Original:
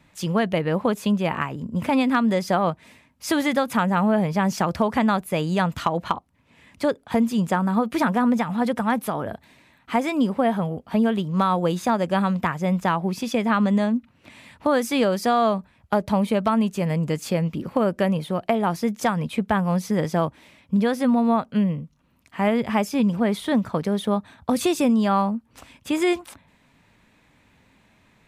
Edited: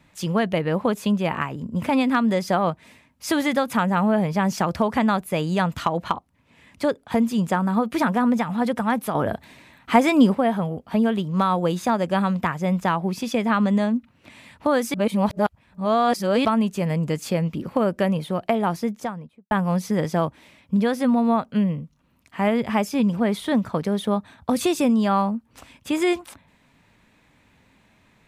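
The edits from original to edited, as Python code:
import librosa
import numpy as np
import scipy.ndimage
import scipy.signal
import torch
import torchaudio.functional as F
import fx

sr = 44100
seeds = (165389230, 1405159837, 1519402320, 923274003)

y = fx.studio_fade_out(x, sr, start_s=18.63, length_s=0.88)
y = fx.edit(y, sr, fx.clip_gain(start_s=9.15, length_s=1.2, db=6.0),
    fx.reverse_span(start_s=14.94, length_s=1.51), tone=tone)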